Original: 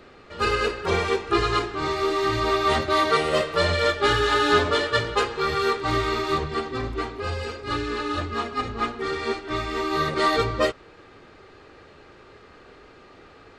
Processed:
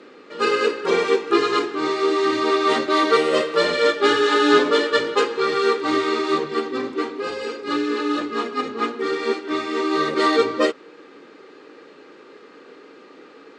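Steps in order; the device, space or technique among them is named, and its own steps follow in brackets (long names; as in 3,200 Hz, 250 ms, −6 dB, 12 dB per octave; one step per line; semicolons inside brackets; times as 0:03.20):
television speaker (loudspeaker in its box 200–9,000 Hz, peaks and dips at 290 Hz +7 dB, 470 Hz +6 dB, 690 Hz −6 dB)
level +2 dB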